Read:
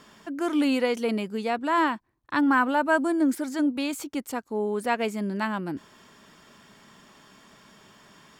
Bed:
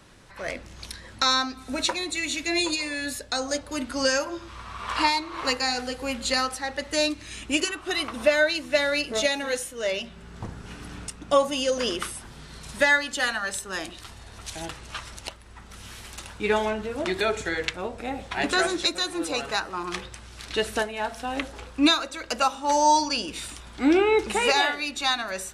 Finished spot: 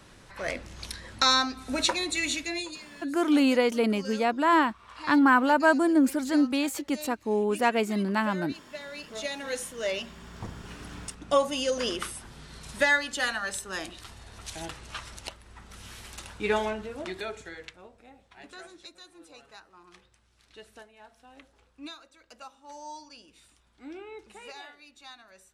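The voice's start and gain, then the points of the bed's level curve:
2.75 s, +1.5 dB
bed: 2.31 s 0 dB
2.87 s -18.5 dB
8.8 s -18.5 dB
9.65 s -3 dB
16.6 s -3 dB
18.21 s -23 dB

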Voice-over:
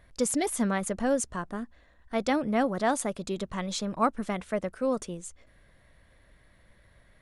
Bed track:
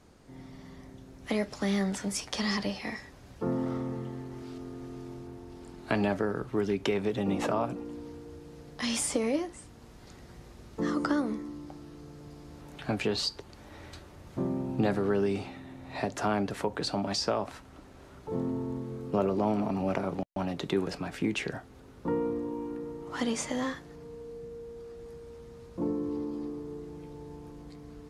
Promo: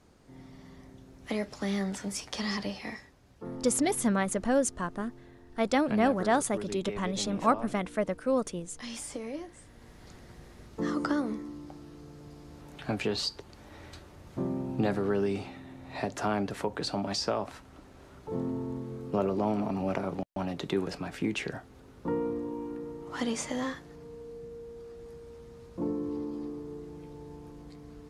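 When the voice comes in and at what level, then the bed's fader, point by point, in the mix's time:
3.45 s, +0.5 dB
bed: 2.92 s -2.5 dB
3.16 s -9.5 dB
9.32 s -9.5 dB
9.91 s -1 dB

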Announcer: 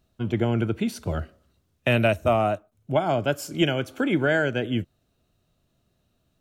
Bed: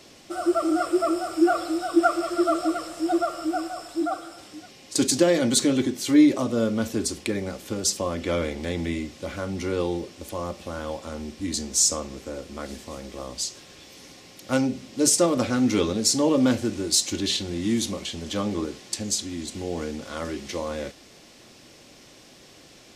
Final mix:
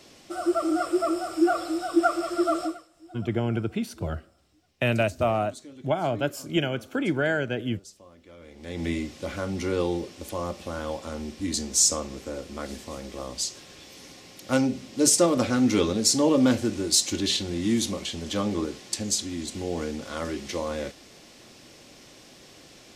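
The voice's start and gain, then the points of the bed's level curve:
2.95 s, -3.0 dB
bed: 2.64 s -2 dB
2.88 s -24 dB
8.37 s -24 dB
8.86 s 0 dB

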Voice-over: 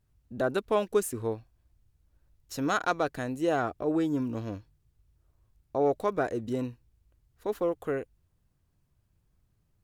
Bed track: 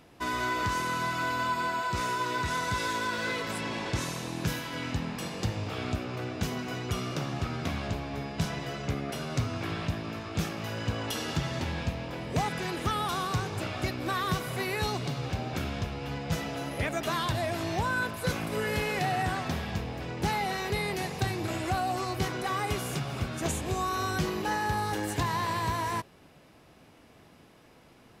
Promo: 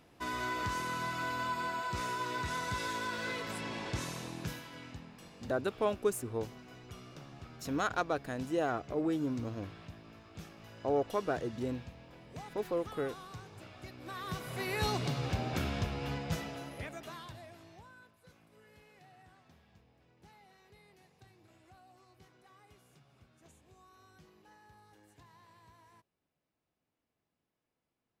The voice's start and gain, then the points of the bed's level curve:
5.10 s, -5.0 dB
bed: 4.22 s -6 dB
5.11 s -17.5 dB
13.84 s -17.5 dB
14.88 s -1.5 dB
16.09 s -1.5 dB
18.18 s -31 dB

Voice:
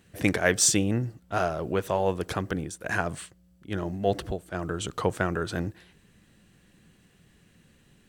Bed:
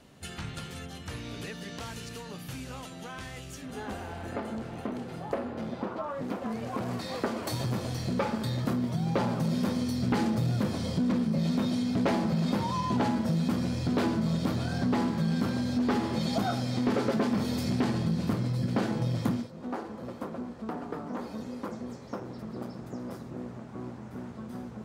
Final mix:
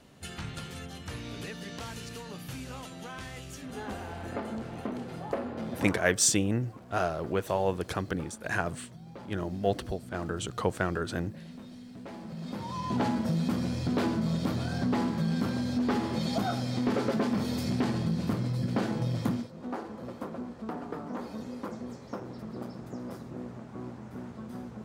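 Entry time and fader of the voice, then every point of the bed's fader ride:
5.60 s, -2.5 dB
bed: 5.93 s -0.5 dB
6.17 s -18 dB
12.03 s -18 dB
13.01 s -1 dB

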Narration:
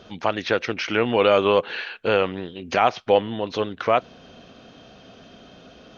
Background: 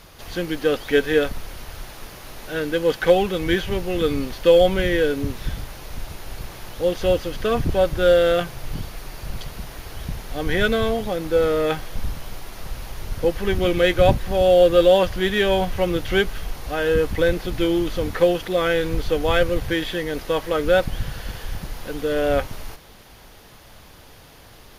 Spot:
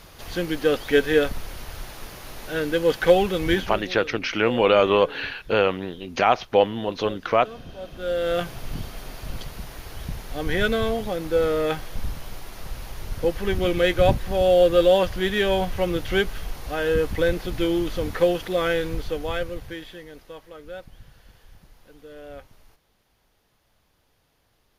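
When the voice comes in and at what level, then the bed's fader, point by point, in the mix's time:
3.45 s, 0.0 dB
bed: 3.52 s -0.5 dB
4.06 s -19.5 dB
7.8 s -19.5 dB
8.42 s -2.5 dB
18.71 s -2.5 dB
20.54 s -20.5 dB

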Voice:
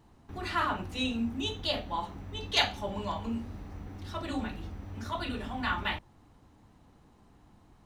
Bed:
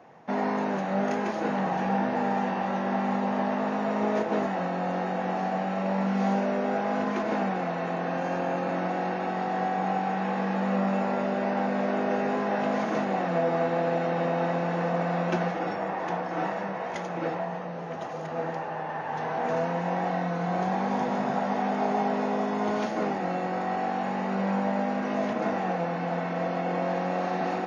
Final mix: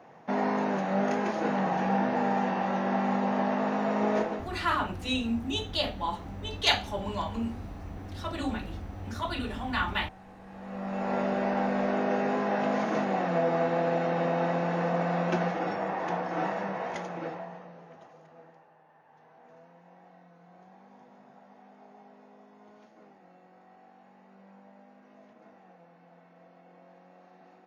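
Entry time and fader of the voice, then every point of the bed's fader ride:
4.10 s, +2.0 dB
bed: 4.25 s -0.5 dB
4.55 s -23 dB
10.38 s -23 dB
11.15 s -1 dB
16.87 s -1 dB
18.79 s -27.5 dB

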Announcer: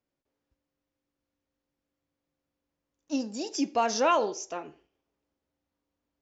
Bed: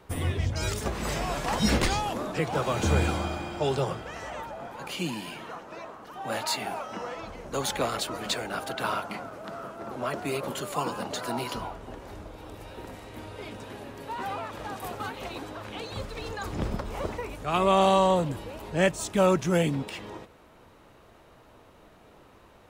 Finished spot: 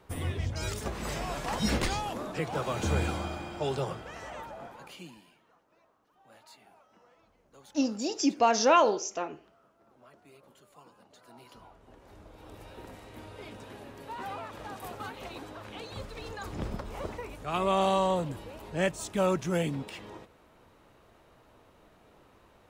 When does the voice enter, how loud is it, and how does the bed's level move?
4.65 s, +2.5 dB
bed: 4.64 s -4.5 dB
5.42 s -26 dB
11.08 s -26 dB
12.55 s -5 dB

